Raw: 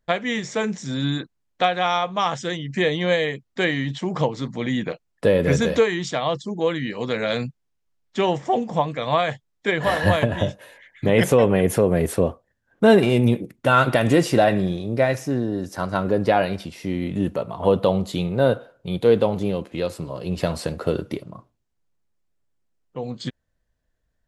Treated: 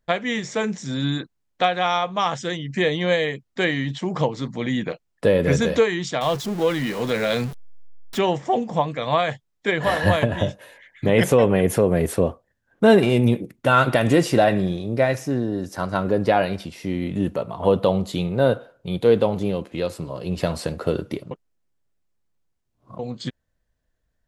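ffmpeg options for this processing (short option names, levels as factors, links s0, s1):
-filter_complex "[0:a]asettb=1/sr,asplit=3[s0][s1][s2];[s0]atrim=end=6.214[s3];[s1]atrim=start=6.21:end=8.19,asetpts=PTS-STARTPTS,afade=t=in:d=0.004:c=qsin,afade=t=out:st=1.976:d=0.004:c=qsin,aeval=exprs='val(0)+0.5*0.0335*sgn(val(0))':c=same[s4];[s2]atrim=start=8.186[s5];[s3][s4]acrossfade=d=0.004:c1=hsin:c2=qsin[s6];[s6][s5]acrossfade=d=0.004:c1=qsin:c2=hsin,asplit=3[s7][s8][s9];[s7]atrim=end=21.312[s10];[s8]atrim=start=21.308:end=22.992,asetpts=PTS-STARTPTS,areverse[s11];[s9]atrim=start=22.988[s12];[s10][s11]acrossfade=d=0.004:c1=hsin:c2=hsin[s13];[s13][s12]acrossfade=d=0.004:c1=hsin:c2=hsin"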